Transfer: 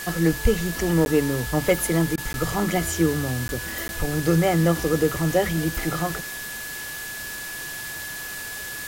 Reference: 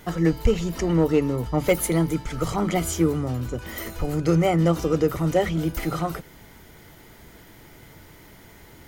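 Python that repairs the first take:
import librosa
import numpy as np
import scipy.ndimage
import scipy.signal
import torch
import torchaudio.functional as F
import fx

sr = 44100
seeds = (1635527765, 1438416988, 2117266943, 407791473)

y = fx.notch(x, sr, hz=1700.0, q=30.0)
y = fx.fix_interpolate(y, sr, at_s=(1.05, 2.33, 3.48, 3.88), length_ms=11.0)
y = fx.fix_interpolate(y, sr, at_s=(2.16,), length_ms=15.0)
y = fx.noise_reduce(y, sr, print_start_s=8.17, print_end_s=8.67, reduce_db=15.0)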